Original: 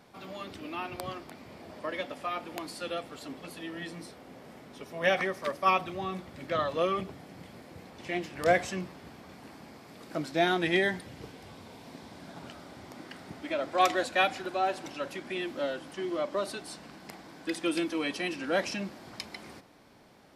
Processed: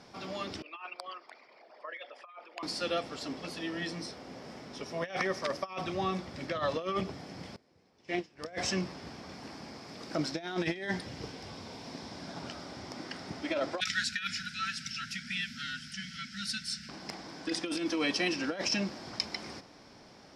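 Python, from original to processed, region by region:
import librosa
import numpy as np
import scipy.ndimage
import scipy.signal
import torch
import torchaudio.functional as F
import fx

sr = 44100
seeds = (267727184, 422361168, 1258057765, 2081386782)

y = fx.chain(x, sr, fx.envelope_sharpen(power=2.0),
    fx.highpass(hz=1400.0, slope=12),
    fx.over_compress(threshold_db=-45.0, ratio=-0.5), at=(0.62, 2.63))
y = fx.chain(y, sr, fx.peak_eq(hz=410.0, db=5.0, octaves=0.33),
    fx.upward_expand(threshold_db=-43.0, expansion=2.5), at=(7.56, 8.45))
y = fx.chain(y, sr, fx.brickwall_bandstop(low_hz=250.0, high_hz=1300.0),
    fx.high_shelf(hz=7900.0, db=5.0), at=(13.8, 16.89))
y = scipy.signal.sosfilt(scipy.signal.butter(2, 7600.0, 'lowpass', fs=sr, output='sos'), y)
y = fx.peak_eq(y, sr, hz=5300.0, db=11.5, octaves=0.37)
y = fx.over_compress(y, sr, threshold_db=-31.0, ratio=-0.5)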